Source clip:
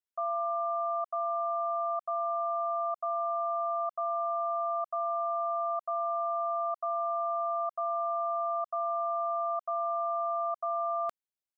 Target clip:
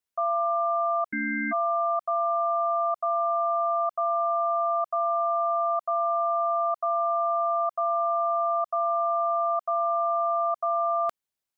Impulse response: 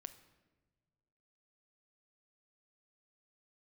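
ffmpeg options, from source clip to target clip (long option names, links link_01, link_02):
-filter_complex "[0:a]asplit=3[link_01][link_02][link_03];[link_01]afade=type=out:start_time=1.08:duration=0.02[link_04];[link_02]aeval=exprs='val(0)*sin(2*PI*900*n/s)':channel_layout=same,afade=type=in:start_time=1.08:duration=0.02,afade=type=out:start_time=1.51:duration=0.02[link_05];[link_03]afade=type=in:start_time=1.51:duration=0.02[link_06];[link_04][link_05][link_06]amix=inputs=3:normalize=0,volume=6dB"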